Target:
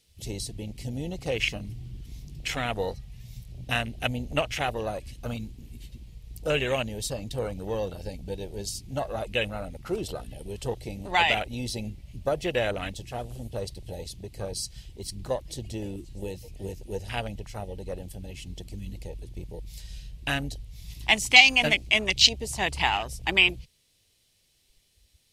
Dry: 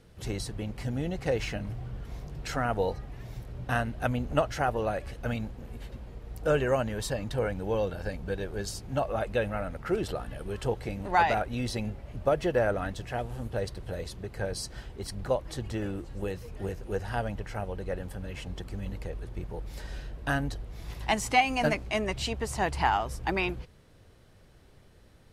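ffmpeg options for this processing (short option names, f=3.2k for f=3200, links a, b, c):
-af "afwtdn=0.0158,aexciter=amount=10.6:drive=3.4:freq=2.2k,volume=-1.5dB"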